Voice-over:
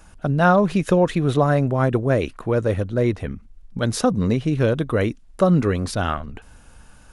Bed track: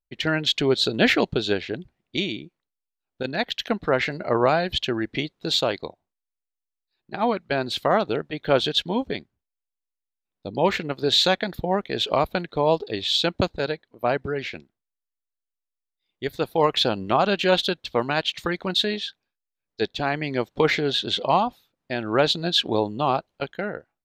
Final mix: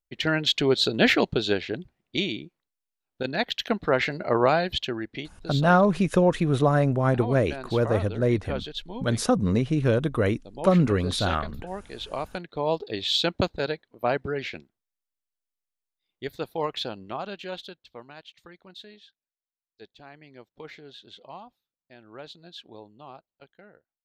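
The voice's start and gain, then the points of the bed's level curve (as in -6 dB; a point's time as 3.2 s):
5.25 s, -3.0 dB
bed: 4.6 s -1 dB
5.53 s -12.5 dB
11.96 s -12.5 dB
13.04 s -2 dB
15.85 s -2 dB
18.25 s -22.5 dB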